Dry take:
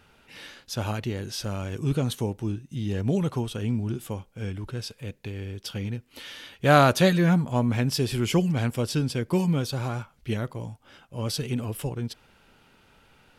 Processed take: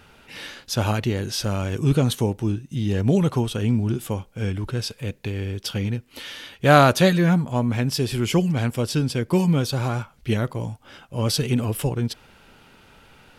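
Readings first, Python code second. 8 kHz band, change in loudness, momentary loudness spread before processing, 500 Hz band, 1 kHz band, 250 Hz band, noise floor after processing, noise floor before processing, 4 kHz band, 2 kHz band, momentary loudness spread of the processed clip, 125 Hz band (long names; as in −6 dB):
+5.0 dB, +4.0 dB, 17 LU, +4.0 dB, +3.5 dB, +4.0 dB, −55 dBFS, −61 dBFS, +4.5 dB, +3.5 dB, 13 LU, +4.5 dB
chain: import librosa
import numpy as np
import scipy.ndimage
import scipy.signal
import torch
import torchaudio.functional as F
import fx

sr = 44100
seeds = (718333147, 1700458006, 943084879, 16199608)

y = fx.rider(x, sr, range_db=3, speed_s=2.0)
y = F.gain(torch.from_numpy(y), 4.0).numpy()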